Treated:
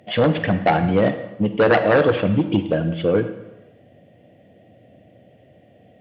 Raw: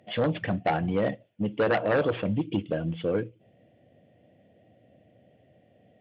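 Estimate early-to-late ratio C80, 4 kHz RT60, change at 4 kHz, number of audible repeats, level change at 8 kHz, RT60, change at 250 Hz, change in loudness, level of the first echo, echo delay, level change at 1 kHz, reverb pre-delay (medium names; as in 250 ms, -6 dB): 12.5 dB, 0.90 s, +9.0 dB, no echo, no reading, 1.0 s, +9.0 dB, +8.5 dB, no echo, no echo, +9.0 dB, 38 ms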